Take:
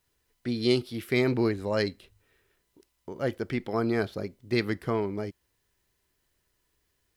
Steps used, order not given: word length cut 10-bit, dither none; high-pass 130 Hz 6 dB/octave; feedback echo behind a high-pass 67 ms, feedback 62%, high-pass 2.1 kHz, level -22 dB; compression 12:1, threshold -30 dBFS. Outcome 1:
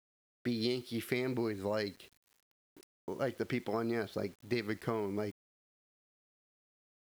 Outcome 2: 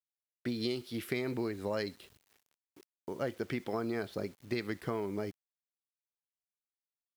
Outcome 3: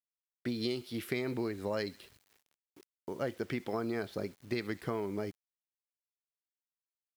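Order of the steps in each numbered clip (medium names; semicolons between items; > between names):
high-pass > compression > feedback echo behind a high-pass > word length cut; compression > feedback echo behind a high-pass > word length cut > high-pass; feedback echo behind a high-pass > compression > word length cut > high-pass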